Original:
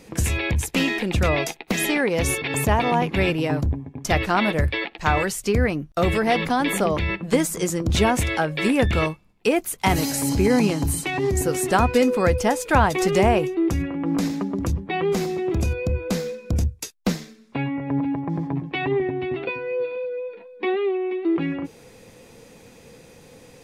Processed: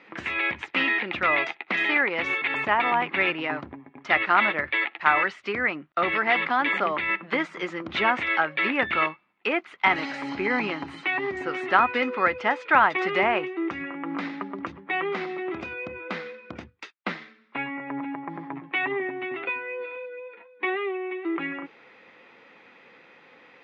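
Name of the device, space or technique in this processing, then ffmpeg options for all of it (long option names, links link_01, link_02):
phone earpiece: -af "highpass=440,equalizer=frequency=470:width_type=q:width=4:gain=-9,equalizer=frequency=670:width_type=q:width=4:gain=-4,equalizer=frequency=1300:width_type=q:width=4:gain=6,equalizer=frequency=2000:width_type=q:width=4:gain=6,lowpass=frequency=3200:width=0.5412,lowpass=frequency=3200:width=1.3066"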